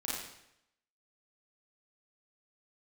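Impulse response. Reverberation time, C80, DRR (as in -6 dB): 0.80 s, 2.5 dB, -7.0 dB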